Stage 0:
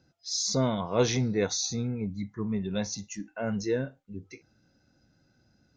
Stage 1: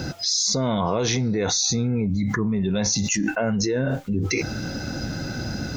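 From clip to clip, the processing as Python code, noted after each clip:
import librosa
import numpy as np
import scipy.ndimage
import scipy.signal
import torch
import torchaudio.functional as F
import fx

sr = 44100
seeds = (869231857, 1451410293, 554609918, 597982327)

y = fx.env_flatten(x, sr, amount_pct=100)
y = y * 10.0 ** (-3.0 / 20.0)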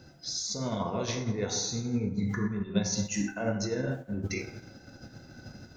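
y = fx.rev_plate(x, sr, seeds[0], rt60_s=1.3, hf_ratio=0.45, predelay_ms=0, drr_db=1.5)
y = fx.upward_expand(y, sr, threshold_db=-29.0, expansion=2.5)
y = y * 10.0 ** (-5.0 / 20.0)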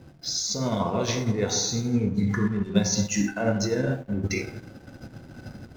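y = fx.backlash(x, sr, play_db=-49.5)
y = y * 10.0 ** (6.0 / 20.0)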